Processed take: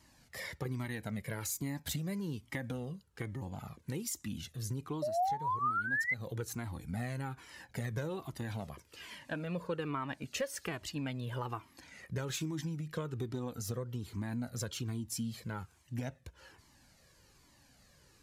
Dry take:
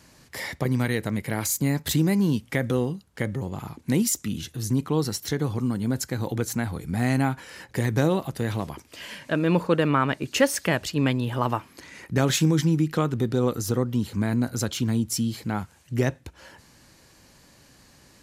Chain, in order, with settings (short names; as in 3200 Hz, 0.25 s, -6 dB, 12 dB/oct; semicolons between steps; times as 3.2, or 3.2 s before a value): painted sound rise, 5.02–6.14, 580–2100 Hz -14 dBFS; compressor 5:1, threshold -23 dBFS, peak gain reduction 10 dB; cascading flanger falling 1.2 Hz; gain -5.5 dB